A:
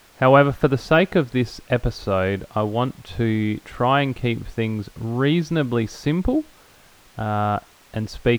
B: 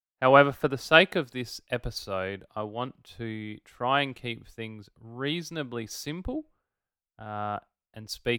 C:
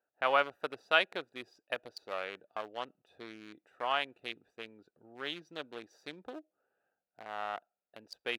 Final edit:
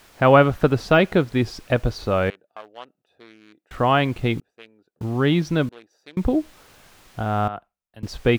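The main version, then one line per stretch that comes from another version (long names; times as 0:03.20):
A
0:02.30–0:03.71: punch in from C
0:04.40–0:05.01: punch in from C
0:05.69–0:06.17: punch in from C
0:07.48–0:08.03: punch in from B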